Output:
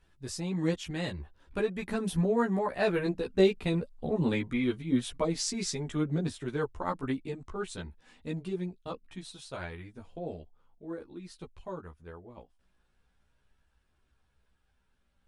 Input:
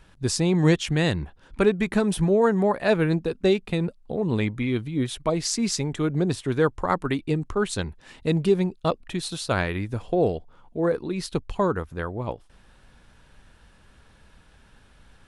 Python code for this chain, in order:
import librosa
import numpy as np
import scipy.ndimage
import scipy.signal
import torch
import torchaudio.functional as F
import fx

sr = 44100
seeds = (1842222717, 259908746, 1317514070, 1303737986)

y = fx.doppler_pass(x, sr, speed_mps=8, closest_m=11.0, pass_at_s=4.11)
y = fx.chorus_voices(y, sr, voices=4, hz=0.17, base_ms=14, depth_ms=2.7, mix_pct=50)